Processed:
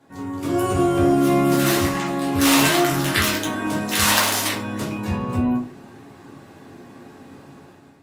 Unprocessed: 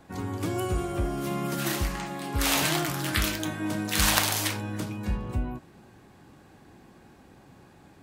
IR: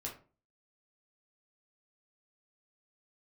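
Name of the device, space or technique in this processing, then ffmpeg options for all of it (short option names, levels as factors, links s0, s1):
far-field microphone of a smart speaker: -filter_complex "[1:a]atrim=start_sample=2205[s0];[0:a][s0]afir=irnorm=-1:irlink=0,highpass=140,dynaudnorm=f=160:g=7:m=3.55" -ar 48000 -c:a libopus -b:a 48k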